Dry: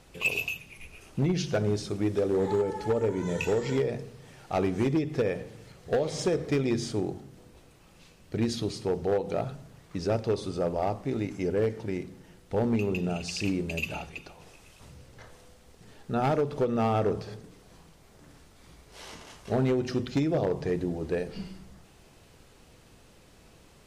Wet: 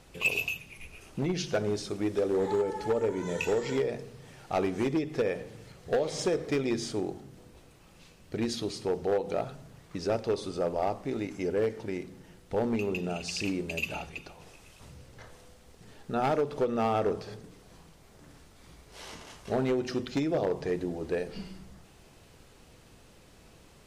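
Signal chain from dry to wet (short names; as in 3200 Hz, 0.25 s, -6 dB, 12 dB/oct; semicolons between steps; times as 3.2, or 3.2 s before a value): dynamic EQ 110 Hz, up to -8 dB, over -43 dBFS, Q 0.72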